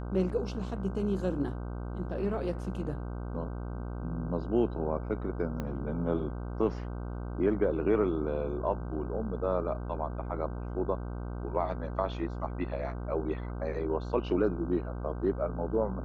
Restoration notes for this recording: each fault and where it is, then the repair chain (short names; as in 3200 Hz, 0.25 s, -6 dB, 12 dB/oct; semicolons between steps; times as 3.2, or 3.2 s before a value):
buzz 60 Hz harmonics 26 -37 dBFS
5.6 pop -22 dBFS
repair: de-click; de-hum 60 Hz, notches 26